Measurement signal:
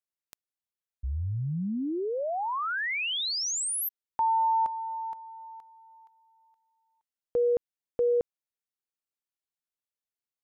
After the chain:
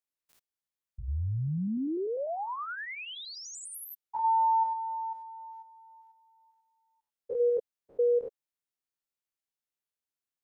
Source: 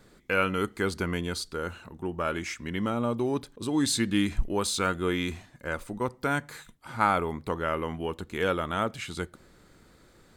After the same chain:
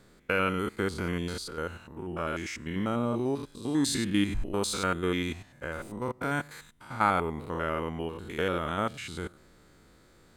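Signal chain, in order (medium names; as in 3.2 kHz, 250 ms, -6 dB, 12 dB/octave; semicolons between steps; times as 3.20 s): spectrogram pixelated in time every 100 ms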